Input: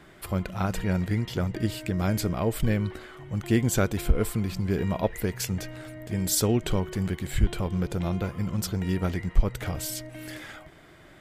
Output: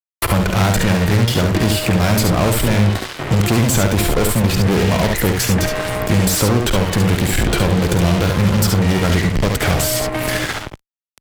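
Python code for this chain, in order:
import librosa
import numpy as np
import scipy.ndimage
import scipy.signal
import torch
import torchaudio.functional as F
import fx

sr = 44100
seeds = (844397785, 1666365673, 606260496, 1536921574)

y = fx.fuzz(x, sr, gain_db=34.0, gate_db=-41.0)
y = fx.room_early_taps(y, sr, ms=(50, 69), db=(-12.0, -5.0))
y = fx.band_squash(y, sr, depth_pct=70)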